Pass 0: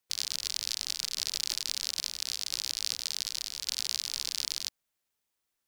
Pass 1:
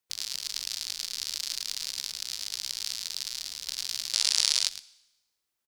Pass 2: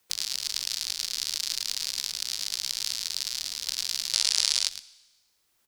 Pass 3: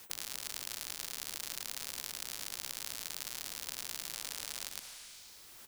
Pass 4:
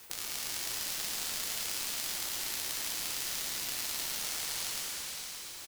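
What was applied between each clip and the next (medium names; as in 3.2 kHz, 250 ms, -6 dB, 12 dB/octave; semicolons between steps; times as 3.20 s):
delay 109 ms -4.5 dB; time-frequency box 4.14–4.67 s, 410–11000 Hz +10 dB; Schroeder reverb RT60 1 s, combs from 25 ms, DRR 19.5 dB; trim -2 dB
three bands compressed up and down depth 40%; trim +3 dB
peak limiter -10 dBFS, peak gain reduction 7.5 dB; spectrum-flattening compressor 4:1; trim -6 dB
on a send: delay 571 ms -11 dB; on the sum: plate-style reverb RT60 3.7 s, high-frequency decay 1×, DRR -4.5 dB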